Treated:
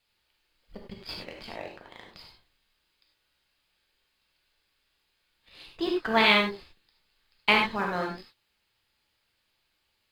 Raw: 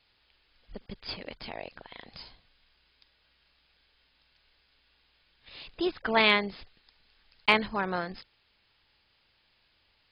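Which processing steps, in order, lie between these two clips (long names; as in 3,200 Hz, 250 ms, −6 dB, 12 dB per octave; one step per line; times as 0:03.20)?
mu-law and A-law mismatch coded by A
pitch vibrato 8.5 Hz 12 cents
reverb whose tail is shaped and stops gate 120 ms flat, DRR 0.5 dB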